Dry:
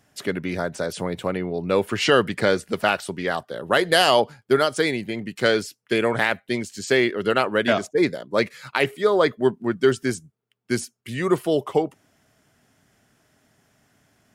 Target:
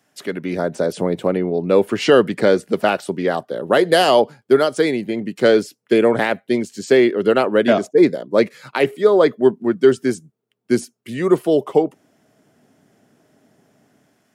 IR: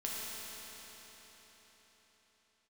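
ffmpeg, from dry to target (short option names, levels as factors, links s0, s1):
-filter_complex "[0:a]highpass=190,acrossover=split=690|1500[s0][s1][s2];[s0]dynaudnorm=f=200:g=5:m=3.76[s3];[s3][s1][s2]amix=inputs=3:normalize=0,volume=0.891"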